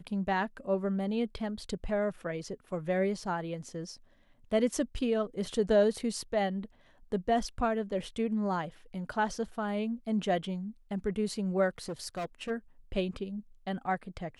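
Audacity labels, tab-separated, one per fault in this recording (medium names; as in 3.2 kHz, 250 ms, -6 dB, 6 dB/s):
11.780000	12.510000	clipped -32 dBFS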